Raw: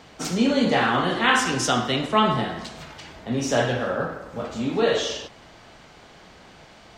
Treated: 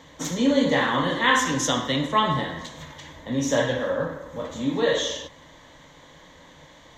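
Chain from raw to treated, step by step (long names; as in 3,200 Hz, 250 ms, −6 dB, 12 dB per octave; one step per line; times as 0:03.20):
EQ curve with evenly spaced ripples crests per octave 1.1, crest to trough 11 dB
level −2.5 dB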